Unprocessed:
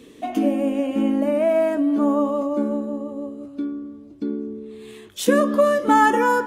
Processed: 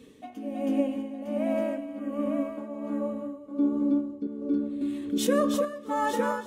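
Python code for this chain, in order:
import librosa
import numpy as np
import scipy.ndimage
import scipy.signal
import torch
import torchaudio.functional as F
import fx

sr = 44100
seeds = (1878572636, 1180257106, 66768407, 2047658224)

y = fx.low_shelf(x, sr, hz=250.0, db=3.5)
y = fx.notch_comb(y, sr, f0_hz=340.0)
y = fx.echo_feedback(y, sr, ms=322, feedback_pct=26, wet_db=-4)
y = fx.rider(y, sr, range_db=4, speed_s=2.0)
y = fx.fixed_phaser(y, sr, hz=2000.0, stages=4, at=(1.99, 2.58))
y = fx.peak_eq(y, sr, hz=340.0, db=12.0, octaves=1.4, at=(3.51, 4.27))
y = y + 10.0 ** (-5.5 / 20.0) * np.pad(y, (int(907 * sr / 1000.0), 0))[:len(y)]
y = y * (1.0 - 0.74 / 2.0 + 0.74 / 2.0 * np.cos(2.0 * np.pi * 1.3 * (np.arange(len(y)) / sr)))
y = fx.env_flatten(y, sr, amount_pct=50, at=(4.81, 5.65))
y = y * 10.0 ** (-8.0 / 20.0)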